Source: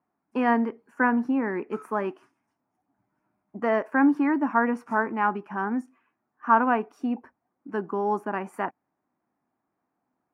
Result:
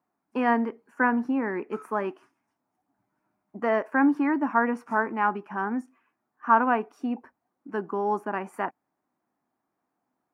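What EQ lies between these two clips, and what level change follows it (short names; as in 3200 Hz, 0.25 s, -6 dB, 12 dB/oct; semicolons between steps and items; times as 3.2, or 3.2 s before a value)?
low shelf 190 Hz -4.5 dB; 0.0 dB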